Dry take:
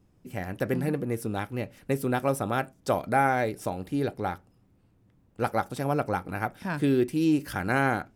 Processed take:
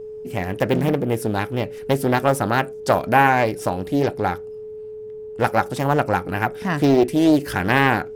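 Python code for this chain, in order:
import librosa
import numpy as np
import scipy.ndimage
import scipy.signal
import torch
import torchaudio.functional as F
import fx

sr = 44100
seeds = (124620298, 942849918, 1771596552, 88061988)

y = x + 10.0 ** (-40.0 / 20.0) * np.sin(2.0 * np.pi * 430.0 * np.arange(len(x)) / sr)
y = fx.doppler_dist(y, sr, depth_ms=0.47)
y = y * librosa.db_to_amplitude(8.5)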